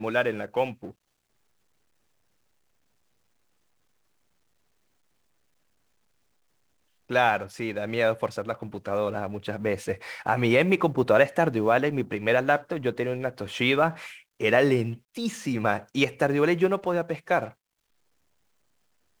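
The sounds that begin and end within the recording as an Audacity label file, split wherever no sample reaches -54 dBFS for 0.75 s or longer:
7.090000	17.530000	sound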